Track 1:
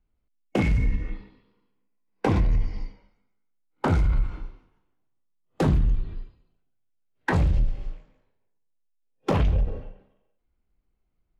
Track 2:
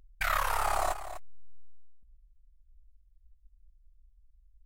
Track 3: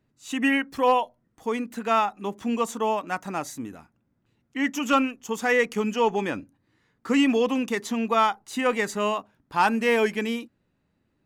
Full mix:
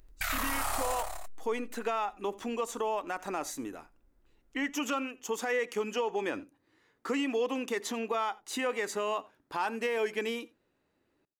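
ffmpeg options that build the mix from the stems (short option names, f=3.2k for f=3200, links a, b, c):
-filter_complex "[1:a]highshelf=f=3.2k:g=10.5,volume=-0.5dB,afade=t=out:st=0.8:d=0.71:silence=0.354813,asplit=2[a][b];[b]volume=-3.5dB[c];[2:a]acompressor=threshold=-28dB:ratio=4,lowshelf=f=260:t=q:w=1.5:g=-8.5,volume=0dB,asplit=2[d][e];[e]volume=-23.5dB[f];[c][f]amix=inputs=2:normalize=0,aecho=0:1:86:1[g];[a][d][g]amix=inputs=3:normalize=0,alimiter=limit=-22dB:level=0:latency=1:release=17"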